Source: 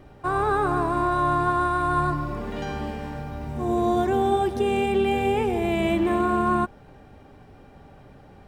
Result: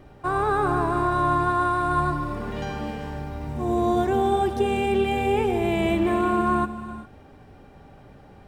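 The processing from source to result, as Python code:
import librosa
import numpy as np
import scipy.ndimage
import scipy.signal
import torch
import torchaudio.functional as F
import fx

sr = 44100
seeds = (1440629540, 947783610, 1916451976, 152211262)

y = fx.rev_gated(x, sr, seeds[0], gate_ms=420, shape='rising', drr_db=11.5)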